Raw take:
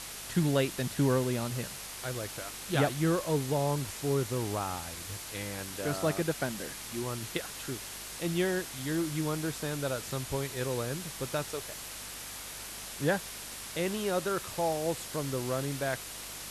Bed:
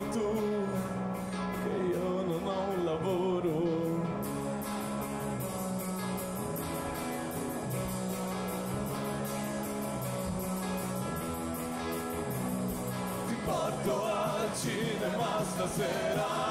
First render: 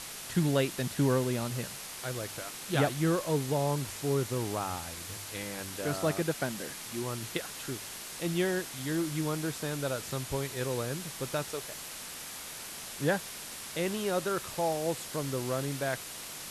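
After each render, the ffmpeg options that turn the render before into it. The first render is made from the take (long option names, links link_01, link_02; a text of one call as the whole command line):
ffmpeg -i in.wav -af "bandreject=frequency=50:width_type=h:width=4,bandreject=frequency=100:width_type=h:width=4" out.wav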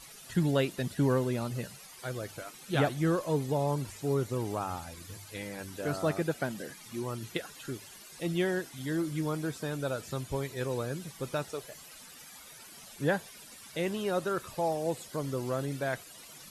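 ffmpeg -i in.wav -af "afftdn=noise_reduction=14:noise_floor=-43" out.wav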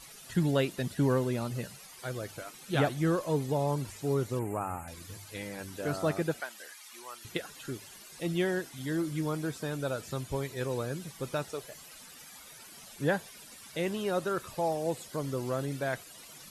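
ffmpeg -i in.wav -filter_complex "[0:a]asettb=1/sr,asplit=3[link_01][link_02][link_03];[link_01]atrim=end=4.394[link_04];[link_02]atrim=start=4.39:end=4.88,asetpts=PTS-STARTPTS,afade=type=in:duration=0.004:curve=qsin,afade=type=out:start_time=0.486:duration=0.004:curve=qsin,asuperstop=centerf=4400:order=12:qfactor=1[link_05];[link_03]atrim=start=4.876[link_06];[link_04][link_05]acrossfade=duration=0.004:curve1=hsin:curve2=qsin[link_07];[link_07][link_06]acrossfade=duration=0.004:curve1=qsin:curve2=hsin,asettb=1/sr,asplit=3[link_08][link_09][link_10];[link_08]atrim=end=6.404[link_11];[link_09]atrim=start=6.4:end=7.25,asetpts=PTS-STARTPTS,afade=type=in:duration=0.004:curve=qsin,afade=type=out:start_time=0.846:duration=0.004:curve=qsin,highpass=980[link_12];[link_10]atrim=start=7.246[link_13];[link_11][link_12]acrossfade=duration=0.004:curve1=hsin:curve2=qsin[link_14];[link_14][link_13]acrossfade=duration=0.004:curve1=qsin:curve2=hsin" out.wav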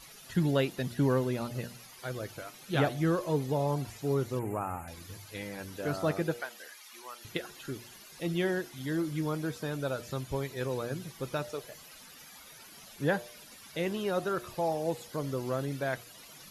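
ffmpeg -i in.wav -af "equalizer=frequency=8300:width_type=o:width=0.34:gain=-8,bandreject=frequency=119.6:width_type=h:width=4,bandreject=frequency=239.2:width_type=h:width=4,bandreject=frequency=358.8:width_type=h:width=4,bandreject=frequency=478.4:width_type=h:width=4,bandreject=frequency=598:width_type=h:width=4,bandreject=frequency=717.6:width_type=h:width=4,bandreject=frequency=837.2:width_type=h:width=4" out.wav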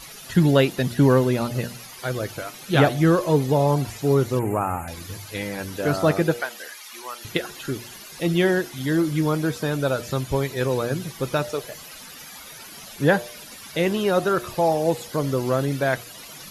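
ffmpeg -i in.wav -af "volume=10.5dB" out.wav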